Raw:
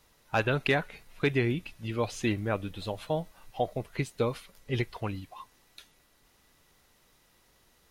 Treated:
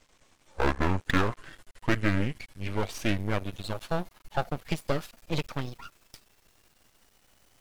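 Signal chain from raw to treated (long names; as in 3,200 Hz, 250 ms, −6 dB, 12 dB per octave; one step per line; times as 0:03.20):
gliding playback speed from 53% → 155%
half-wave rectification
level +5 dB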